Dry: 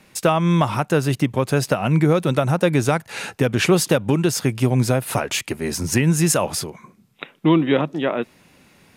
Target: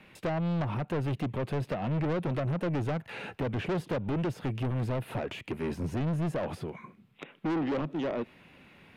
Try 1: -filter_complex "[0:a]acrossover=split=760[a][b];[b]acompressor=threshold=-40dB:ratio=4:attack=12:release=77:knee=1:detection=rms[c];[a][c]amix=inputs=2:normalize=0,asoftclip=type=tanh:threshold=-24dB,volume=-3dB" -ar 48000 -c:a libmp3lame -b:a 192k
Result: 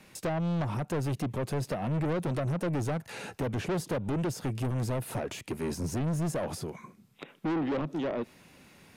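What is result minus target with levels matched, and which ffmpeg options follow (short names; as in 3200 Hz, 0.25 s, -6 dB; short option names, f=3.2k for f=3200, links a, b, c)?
8000 Hz band +13.0 dB
-filter_complex "[0:a]acrossover=split=760[a][b];[b]acompressor=threshold=-40dB:ratio=4:attack=12:release=77:knee=1:detection=rms,highshelf=f=4.2k:t=q:w=1.5:g=-12[c];[a][c]amix=inputs=2:normalize=0,asoftclip=type=tanh:threshold=-24dB,volume=-3dB" -ar 48000 -c:a libmp3lame -b:a 192k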